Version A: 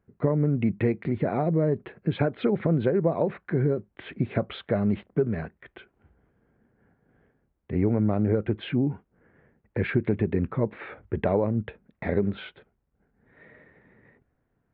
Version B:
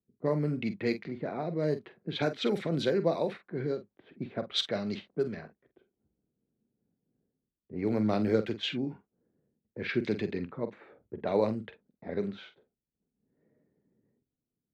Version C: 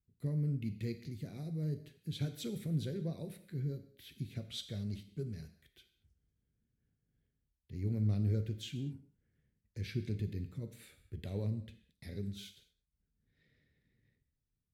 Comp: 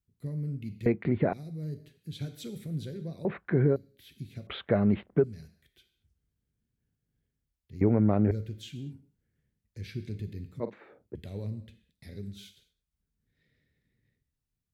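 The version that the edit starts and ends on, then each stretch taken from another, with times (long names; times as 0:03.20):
C
0:00.86–0:01.33: punch in from A
0:03.25–0:03.76: punch in from A
0:04.47–0:05.24: punch in from A
0:07.81–0:08.31: punch in from A
0:10.60–0:11.15: punch in from B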